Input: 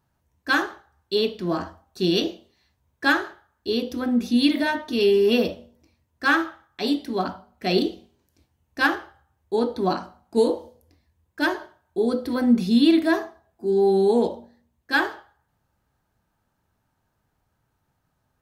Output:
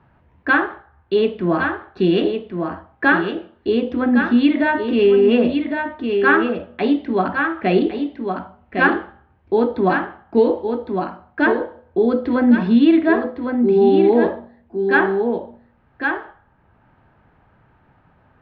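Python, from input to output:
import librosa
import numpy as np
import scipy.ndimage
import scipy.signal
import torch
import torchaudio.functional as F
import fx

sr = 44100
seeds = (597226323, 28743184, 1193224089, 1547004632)

p1 = scipy.signal.sosfilt(scipy.signal.butter(4, 2600.0, 'lowpass', fs=sr, output='sos'), x)
p2 = p1 + fx.echo_single(p1, sr, ms=1108, db=-7.5, dry=0)
p3 = fx.band_squash(p2, sr, depth_pct=40)
y = p3 * 10.0 ** (5.5 / 20.0)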